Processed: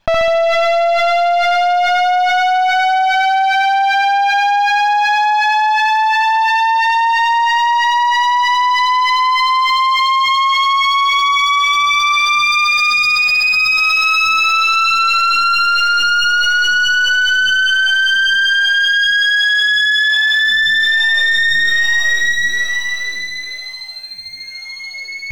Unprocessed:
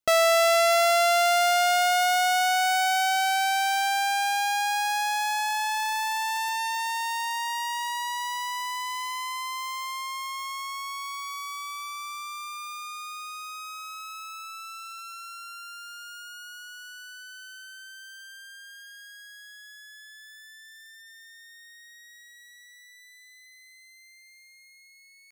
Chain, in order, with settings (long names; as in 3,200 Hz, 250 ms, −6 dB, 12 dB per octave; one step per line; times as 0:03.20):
lower of the sound and its delayed copy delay 1.2 ms
leveller curve on the samples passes 2
high-frequency loss of the air 250 metres
flutter between parallel walls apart 11.6 metres, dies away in 1 s
envelope flattener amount 100%
level +1 dB